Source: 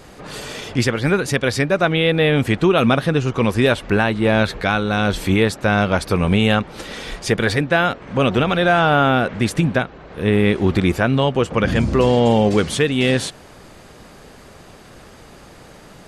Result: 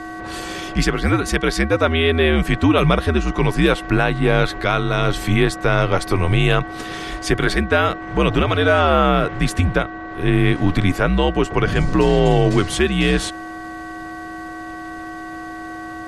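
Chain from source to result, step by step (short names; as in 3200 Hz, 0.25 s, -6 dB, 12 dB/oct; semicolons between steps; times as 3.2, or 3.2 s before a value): buzz 400 Hz, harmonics 5, -32 dBFS -3 dB/oct; frequency shift -77 Hz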